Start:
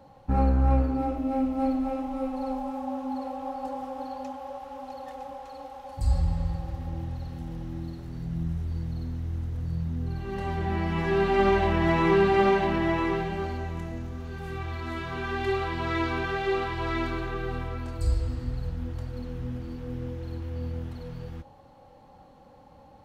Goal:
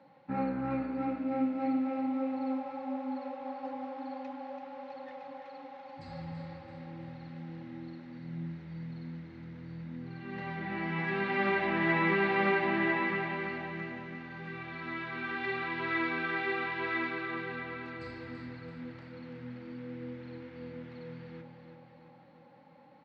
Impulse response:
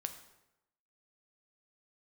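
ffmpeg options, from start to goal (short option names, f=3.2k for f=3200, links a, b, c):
-af "highpass=f=170:w=0.5412,highpass=f=170:w=1.3066,equalizer=f=220:t=q:w=4:g=-5,equalizer=f=410:t=q:w=4:g=-10,equalizer=f=710:t=q:w=4:g=-9,equalizer=f=1.1k:t=q:w=4:g=-5,equalizer=f=2.1k:t=q:w=4:g=6,equalizer=f=3.1k:t=q:w=4:g=-5,lowpass=f=3.9k:w=0.5412,lowpass=f=3.9k:w=1.3066,aecho=1:1:335|670|1005|1340|1675|2010|2345:0.398|0.223|0.125|0.0699|0.0392|0.0219|0.0123,volume=-2dB"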